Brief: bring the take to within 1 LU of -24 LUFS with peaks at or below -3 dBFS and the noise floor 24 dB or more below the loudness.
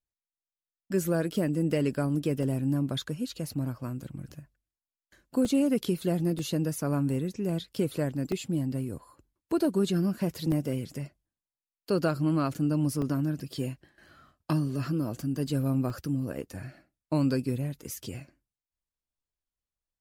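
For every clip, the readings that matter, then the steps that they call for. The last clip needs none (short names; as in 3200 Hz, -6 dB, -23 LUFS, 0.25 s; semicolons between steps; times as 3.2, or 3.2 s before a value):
dropouts 7; longest dropout 1.5 ms; loudness -30.0 LUFS; peak -15.0 dBFS; loudness target -24.0 LUFS
-> interpolate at 2.43/5.45/6.39/8.32/10.52/13.02/15.9, 1.5 ms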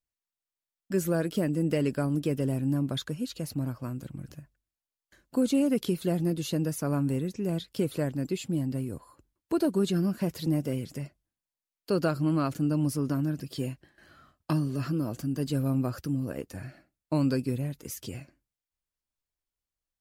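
dropouts 0; loudness -30.0 LUFS; peak -15.0 dBFS; loudness target -24.0 LUFS
-> gain +6 dB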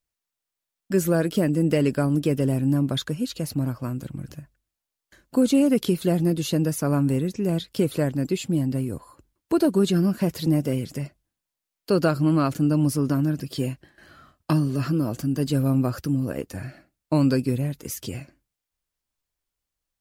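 loudness -24.0 LUFS; peak -9.0 dBFS; noise floor -86 dBFS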